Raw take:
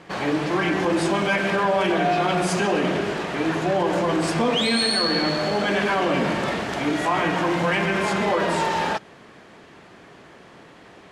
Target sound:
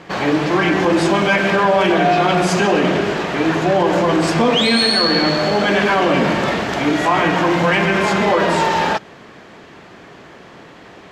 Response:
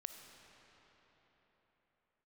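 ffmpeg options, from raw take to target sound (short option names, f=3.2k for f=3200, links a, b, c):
-af "equalizer=f=9.4k:t=o:w=0.26:g=-11,volume=6.5dB"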